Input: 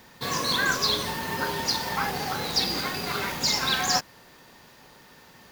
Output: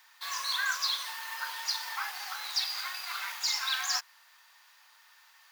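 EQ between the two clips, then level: HPF 1000 Hz 24 dB/oct; -5.5 dB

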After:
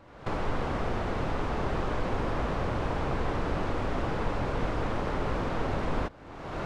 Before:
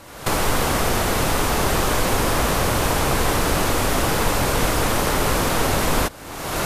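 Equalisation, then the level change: tape spacing loss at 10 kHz 31 dB; -8.0 dB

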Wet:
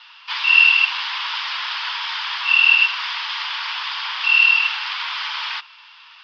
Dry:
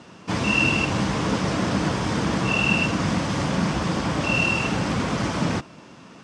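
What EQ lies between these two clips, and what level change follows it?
Chebyshev band-pass 910–5000 Hz, order 4; bell 3300 Hz +13 dB 1.5 oct; -1.0 dB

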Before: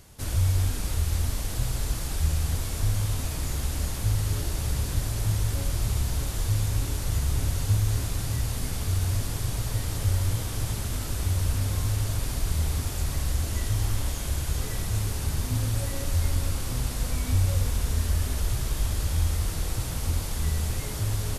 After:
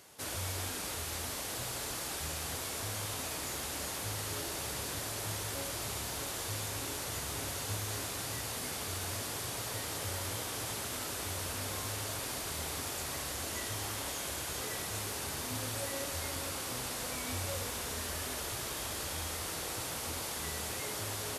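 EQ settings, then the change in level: HPF 75 Hz; tone controls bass -11 dB, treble -2 dB; low shelf 130 Hz -9 dB; 0.0 dB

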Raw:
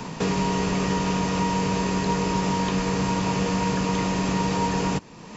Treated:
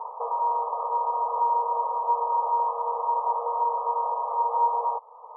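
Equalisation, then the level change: brick-wall FIR band-pass 440–1300 Hz; bell 910 Hz +10.5 dB 0.73 oct; -4.5 dB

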